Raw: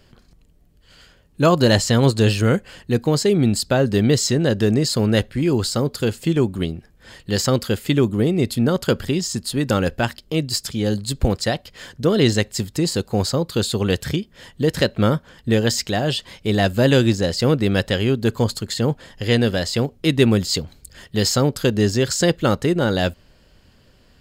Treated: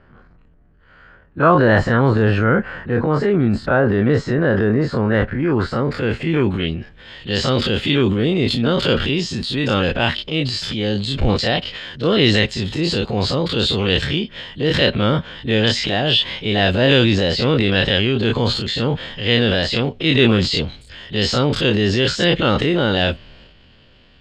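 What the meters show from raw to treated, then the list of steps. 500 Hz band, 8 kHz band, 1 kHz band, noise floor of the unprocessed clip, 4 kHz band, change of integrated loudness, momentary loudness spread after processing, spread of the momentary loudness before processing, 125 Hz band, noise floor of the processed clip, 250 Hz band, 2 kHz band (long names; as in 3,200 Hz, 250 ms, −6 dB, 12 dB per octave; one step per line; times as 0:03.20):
+1.5 dB, −10.0 dB, +4.5 dB, −54 dBFS, +6.0 dB, +2.0 dB, 8 LU, 7 LU, +1.0 dB, −50 dBFS, +1.0 dB, +6.5 dB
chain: every bin's largest magnitude spread in time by 60 ms
transient designer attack −3 dB, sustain +7 dB
low-pass filter sweep 1,500 Hz → 3,200 Hz, 0:05.33–0:07.06
level −2 dB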